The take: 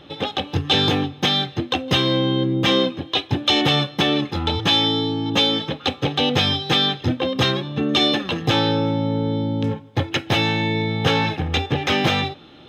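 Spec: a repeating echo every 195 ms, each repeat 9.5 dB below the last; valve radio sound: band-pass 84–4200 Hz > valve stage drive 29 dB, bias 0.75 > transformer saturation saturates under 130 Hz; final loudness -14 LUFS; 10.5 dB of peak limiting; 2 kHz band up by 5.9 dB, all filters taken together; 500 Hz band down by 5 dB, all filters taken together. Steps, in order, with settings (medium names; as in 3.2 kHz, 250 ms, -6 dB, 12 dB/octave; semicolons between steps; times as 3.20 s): peaking EQ 500 Hz -6.5 dB; peaking EQ 2 kHz +8 dB; peak limiter -14 dBFS; band-pass 84–4200 Hz; feedback delay 195 ms, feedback 33%, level -9.5 dB; valve stage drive 29 dB, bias 0.75; transformer saturation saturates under 130 Hz; trim +18 dB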